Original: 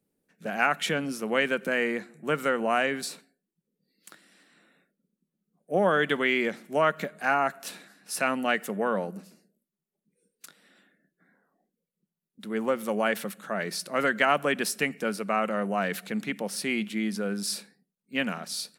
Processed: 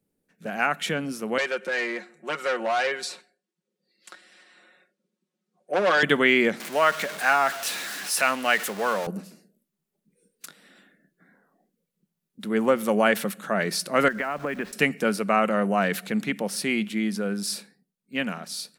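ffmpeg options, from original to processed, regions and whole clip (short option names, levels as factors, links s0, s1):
-filter_complex "[0:a]asettb=1/sr,asplit=3[s0][s1][s2];[s0]atrim=end=1.384[s3];[s1]atrim=start=1.38:end=6.03,asetpts=PTS-STARTPTS,afade=t=in:d=0.004:c=qsin,afade=t=out:st=4.646:d=0.004:c=qsin,aecho=1:1:5.5:0.73,atrim=end_sample=205065,asoftclip=type=hard:threshold=0.0841,highpass=420,lowpass=7100[s4];[s2]atrim=start=6.026[s5];[s3][s4]acrossfade=d=0.004:c1=hsin:c2=qsin[s6];[s6][s5]acrossfade=d=0.004:c1=qsin:c2=hsin,asettb=1/sr,asplit=3[s7][s8][s9];[s7]atrim=end=6.604[s10];[s8]atrim=start=6.6:end=9.07,asetpts=PTS-STARTPTS,afade=t=in:d=0.004:c=qsin,afade=t=out:st=2.466:d=0.004:c=qsin,aeval=exprs='val(0)+0.5*0.0237*sgn(val(0))':c=same,highpass=f=1000:p=1,highshelf=f=11000:g=-3.5[s11];[s9]atrim=start=9.066[s12];[s10][s11]acrossfade=d=0.004:c1=hsin:c2=qsin[s13];[s13][s12]acrossfade=d=0.004:c1=qsin:c2=hsin,asettb=1/sr,asplit=3[s14][s15][s16];[s14]atrim=end=14.084[s17];[s15]atrim=start=14.08:end=14.73,asetpts=PTS-STARTPTS,afade=t=in:d=0.004:c=qsin,afade=t=out:st=0.646:d=0.004:c=qsin,lowpass=f=2400:w=0.5412,lowpass=f=2400:w=1.3066,acompressor=threshold=0.0316:ratio=6:attack=3.2:release=140:knee=1:detection=peak,aeval=exprs='val(0)*gte(abs(val(0)),0.00316)':c=same[s18];[s16]atrim=start=14.726[s19];[s17][s18]acrossfade=d=0.004:c1=hsin:c2=qsin[s20];[s20][s19]acrossfade=d=0.004:c1=qsin:c2=hsin,lowshelf=f=92:g=6.5,dynaudnorm=f=740:g=9:m=2"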